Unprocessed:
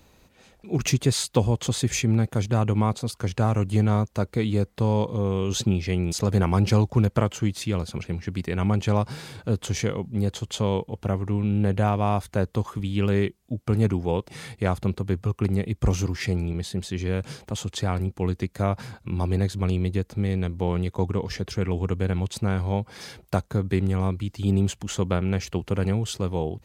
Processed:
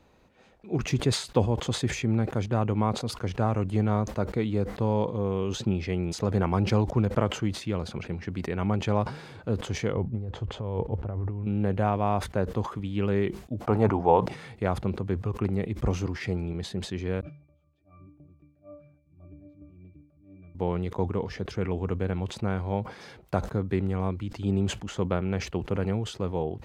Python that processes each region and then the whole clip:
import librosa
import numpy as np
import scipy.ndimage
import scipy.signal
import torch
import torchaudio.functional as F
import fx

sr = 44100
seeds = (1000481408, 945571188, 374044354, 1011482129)

y = fx.chain(x, sr, fx.lowpass(hz=1200.0, slope=6),
    fx.low_shelf_res(hz=130.0, db=6.0, q=1.5),
    fx.over_compress(threshold_db=-25.0, ratio=-1.0), at=(9.93, 11.47))
y = fx.chain(y, sr, fx.peak_eq(hz=840.0, db=14.0, octaves=1.4),
    fx.hum_notches(base_hz=60, count=4), at=(13.61, 14.26))
y = fx.chain(y, sr, fx.filter_lfo_notch(shape='saw_up', hz=2.5, low_hz=850.0, high_hz=1800.0, q=2.2),
    fx.auto_swell(attack_ms=209.0),
    fx.octave_resonator(note='D', decay_s=0.41), at=(17.21, 20.55))
y = fx.lowpass(y, sr, hz=1500.0, slope=6)
y = fx.low_shelf(y, sr, hz=210.0, db=-7.0)
y = fx.sustainer(y, sr, db_per_s=120.0)